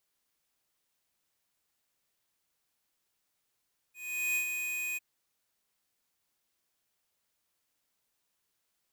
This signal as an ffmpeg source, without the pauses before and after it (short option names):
-f lavfi -i "aevalsrc='0.0335*(2*lt(mod(2490*t,1),0.5)-1)':d=1.051:s=44100,afade=t=in:d=0.418,afade=t=out:st=0.418:d=0.091:silence=0.531,afade=t=out:st=1.03:d=0.021"